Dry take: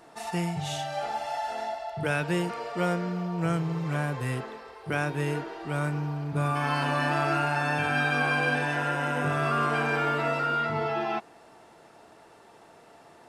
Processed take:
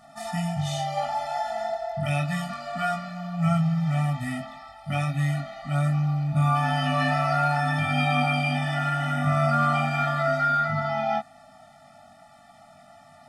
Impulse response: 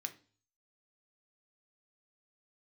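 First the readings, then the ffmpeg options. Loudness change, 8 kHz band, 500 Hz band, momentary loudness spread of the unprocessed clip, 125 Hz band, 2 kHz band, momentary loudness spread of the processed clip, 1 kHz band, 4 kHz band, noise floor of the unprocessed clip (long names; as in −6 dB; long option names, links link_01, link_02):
+3.0 dB, +0.5 dB, +0.5 dB, 7 LU, +6.0 dB, −1.0 dB, 8 LU, +3.5 dB, +2.5 dB, −54 dBFS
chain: -af "flanger=delay=19:depth=2.3:speed=0.28,afftfilt=real='re*eq(mod(floor(b*sr/1024/290),2),0)':imag='im*eq(mod(floor(b*sr/1024/290),2),0)':win_size=1024:overlap=0.75,volume=7.5dB"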